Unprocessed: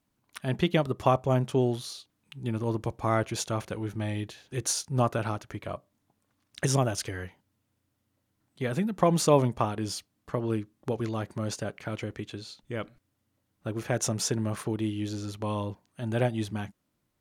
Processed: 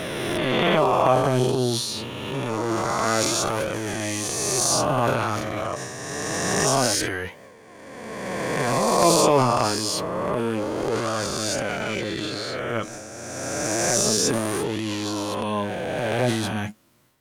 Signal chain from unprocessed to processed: reverse spectral sustain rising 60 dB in 2.10 s; bass shelf 170 Hz -9.5 dB; in parallel at 0 dB: compression, threshold -33 dBFS, peak gain reduction 16.5 dB; on the sum: transient shaper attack -11 dB, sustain +7 dB; flange 0.27 Hz, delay 1.5 ms, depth 8.1 ms, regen +56%; trim +6 dB

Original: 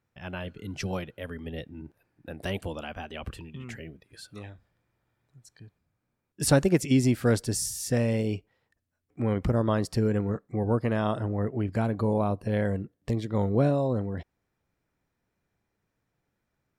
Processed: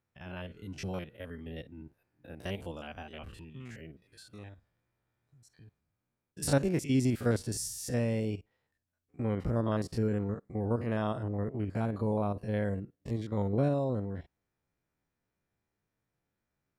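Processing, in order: spectrogram pixelated in time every 50 ms; trim -4.5 dB

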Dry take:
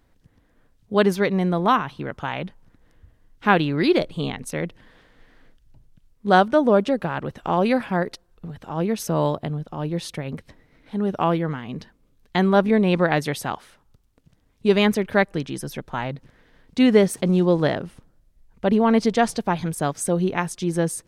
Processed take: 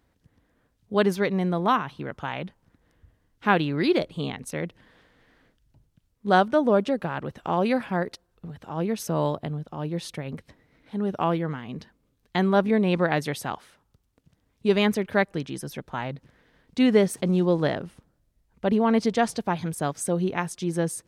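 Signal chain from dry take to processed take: high-pass 44 Hz; trim -3.5 dB

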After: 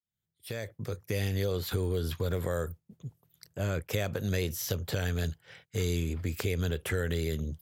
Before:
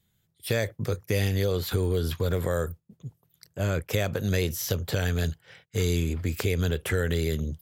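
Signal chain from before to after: fade-in on the opening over 1.38 s; in parallel at -1.5 dB: compression, threshold -37 dBFS, peak gain reduction 15 dB; on the sum: trim -6 dB

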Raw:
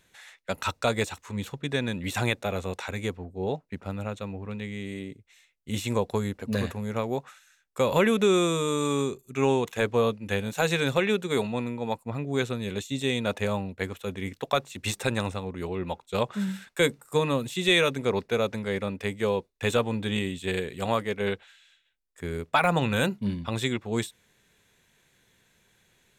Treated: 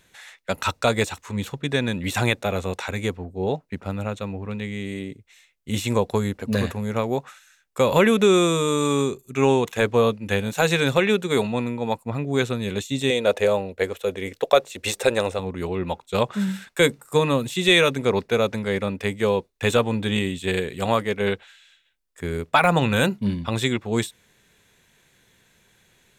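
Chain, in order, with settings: 13.10–15.39 s: graphic EQ 125/250/500/1000 Hz -10/-5/+9/-3 dB; trim +5 dB

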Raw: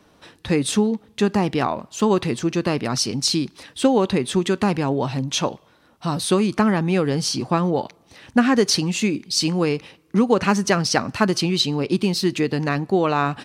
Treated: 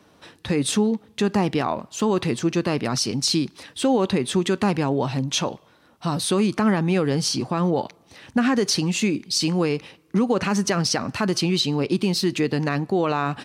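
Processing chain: high-pass 61 Hz; peak limiter -11.5 dBFS, peak gain reduction 8 dB

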